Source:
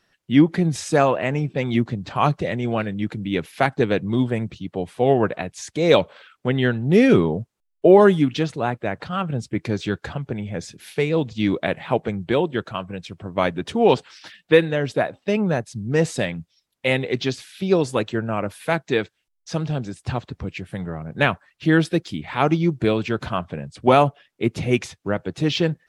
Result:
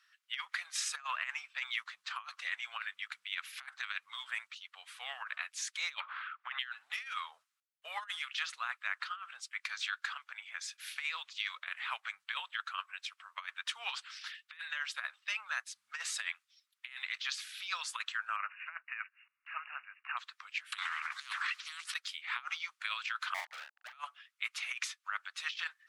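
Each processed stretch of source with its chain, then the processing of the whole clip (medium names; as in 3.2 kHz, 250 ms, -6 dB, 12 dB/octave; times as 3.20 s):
6.00–6.59 s: low-pass 1 kHz + spectrum-flattening compressor 2:1
18.36–20.17 s: block-companded coder 5-bit + brick-wall FIR low-pass 2.9 kHz + upward compressor, threshold -36 dBFS
20.72–21.94 s: steep high-pass 710 Hz 72 dB/octave + distance through air 69 m + spectrum-flattening compressor 10:1
23.34–23.93 s: Chebyshev band-pass 400–910 Hz, order 5 + waveshaping leveller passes 3 + doubling 39 ms -3.5 dB
whole clip: elliptic high-pass 1.2 kHz, stop band 70 dB; treble shelf 3.1 kHz -4 dB; compressor with a negative ratio -34 dBFS, ratio -0.5; trim -3.5 dB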